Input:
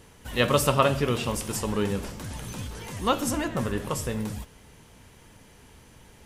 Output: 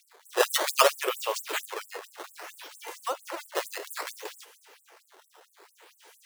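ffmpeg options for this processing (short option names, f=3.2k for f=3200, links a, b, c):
-filter_complex "[0:a]acrusher=samples=11:mix=1:aa=0.000001:lfo=1:lforange=17.6:lforate=0.61,asettb=1/sr,asplit=3[a][b][c];[a]atrim=end=1.654[d];[b]atrim=start=1.65:end=3.55,asetpts=PTS-STARTPTS,afade=t=in:d=0.004:c=qsin,afade=t=out:st=1.896:d=0.004:c=qsin,acrossover=split=600|1800[e][f][g];[e]acompressor=threshold=-33dB:ratio=4[h];[f]acompressor=threshold=-35dB:ratio=4[i];[g]acompressor=threshold=-45dB:ratio=4[j];[h][i][j]amix=inputs=3:normalize=0[k];[c]atrim=start=3.546[l];[d][k]acrossfade=d=0.004:c1=hsin:c2=qsin[m];[m][l]acrossfade=d=0.004:c1=qsin:c2=hsin,afftfilt=real='re*gte(b*sr/1024,300*pow(7800/300,0.5+0.5*sin(2*PI*4.4*pts/sr)))':imag='im*gte(b*sr/1024,300*pow(7800/300,0.5+0.5*sin(2*PI*4.4*pts/sr)))':win_size=1024:overlap=0.75,volume=2.5dB"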